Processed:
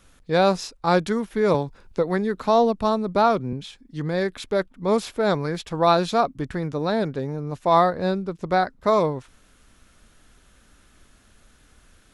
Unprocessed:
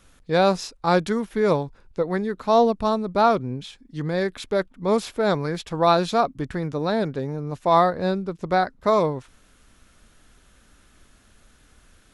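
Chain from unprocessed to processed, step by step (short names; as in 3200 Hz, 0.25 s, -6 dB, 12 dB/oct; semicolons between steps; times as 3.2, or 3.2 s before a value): 1.54–3.53 three-band squash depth 40%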